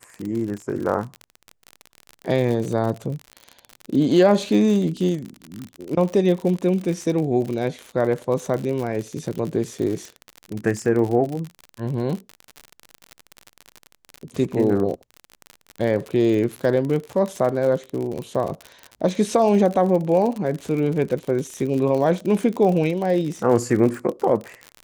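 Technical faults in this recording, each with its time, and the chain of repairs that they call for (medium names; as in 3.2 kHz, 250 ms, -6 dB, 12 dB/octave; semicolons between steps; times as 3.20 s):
crackle 54 per s -26 dBFS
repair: de-click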